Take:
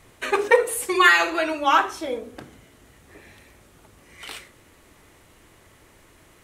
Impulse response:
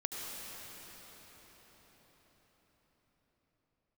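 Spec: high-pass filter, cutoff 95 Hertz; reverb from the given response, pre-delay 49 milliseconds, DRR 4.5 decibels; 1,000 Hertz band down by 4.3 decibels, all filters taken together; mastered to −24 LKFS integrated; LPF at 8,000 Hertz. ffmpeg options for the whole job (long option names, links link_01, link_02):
-filter_complex "[0:a]highpass=95,lowpass=8000,equalizer=frequency=1000:width_type=o:gain=-5.5,asplit=2[link_01][link_02];[1:a]atrim=start_sample=2205,adelay=49[link_03];[link_02][link_03]afir=irnorm=-1:irlink=0,volume=-7.5dB[link_04];[link_01][link_04]amix=inputs=2:normalize=0,volume=-3dB"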